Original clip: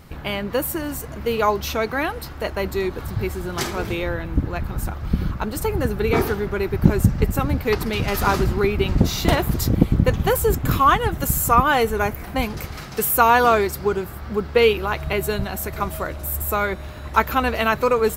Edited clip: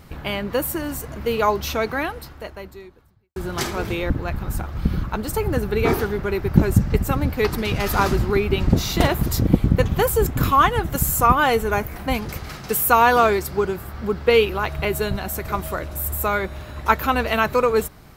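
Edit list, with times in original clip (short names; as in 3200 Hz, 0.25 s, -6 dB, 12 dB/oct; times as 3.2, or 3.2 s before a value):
1.9–3.36 fade out quadratic
4.1–4.38 cut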